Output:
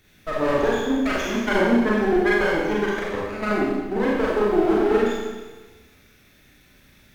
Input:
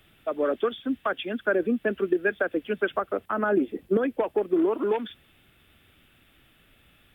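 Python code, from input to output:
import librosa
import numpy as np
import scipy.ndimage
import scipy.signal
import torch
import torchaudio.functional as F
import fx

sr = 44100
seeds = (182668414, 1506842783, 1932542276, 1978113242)

y = fx.lower_of_two(x, sr, delay_ms=0.51)
y = fx.level_steps(y, sr, step_db=13, at=(2.75, 4.0))
y = fx.rev_schroeder(y, sr, rt60_s=1.3, comb_ms=30, drr_db=-6.0)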